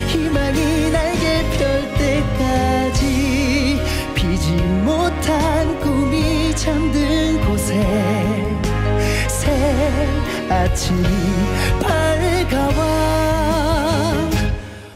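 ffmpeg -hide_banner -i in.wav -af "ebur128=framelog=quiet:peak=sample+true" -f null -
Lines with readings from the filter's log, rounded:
Integrated loudness:
  I:         -17.8 LUFS
  Threshold: -27.8 LUFS
Loudness range:
  LRA:         0.7 LU
  Threshold: -37.8 LUFS
  LRA low:   -18.1 LUFS
  LRA high:  -17.4 LUFS
Sample peak:
  Peak:       -6.2 dBFS
True peak:
  Peak:       -6.1 dBFS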